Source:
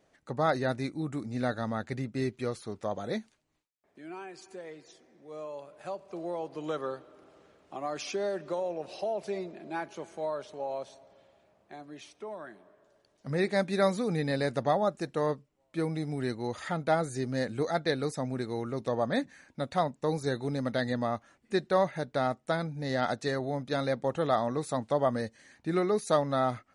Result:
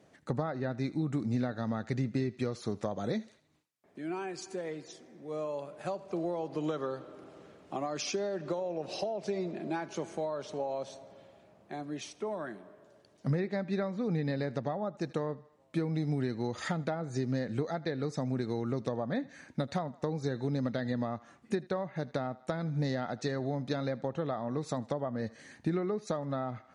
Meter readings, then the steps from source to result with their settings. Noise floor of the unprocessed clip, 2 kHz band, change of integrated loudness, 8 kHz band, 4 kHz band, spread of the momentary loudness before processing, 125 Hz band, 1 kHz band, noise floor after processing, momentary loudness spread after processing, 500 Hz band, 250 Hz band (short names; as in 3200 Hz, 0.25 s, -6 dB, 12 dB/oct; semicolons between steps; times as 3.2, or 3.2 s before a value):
-71 dBFS, -6.0 dB, -3.5 dB, -1.0 dB, -4.0 dB, 15 LU, +1.0 dB, -6.5 dB, -63 dBFS, 8 LU, -4.0 dB, 0.0 dB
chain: treble ducked by the level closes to 2400 Hz, closed at -24 dBFS; dynamic EQ 6000 Hz, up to +6 dB, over -59 dBFS, Q 1.3; HPF 120 Hz; on a send: thinning echo 78 ms, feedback 45%, high-pass 550 Hz, level -21.5 dB; on the sum: compressor 12:1, threshold -36 dBFS, peak gain reduction 17 dB; low shelf 250 Hz +10.5 dB; gain +3.5 dB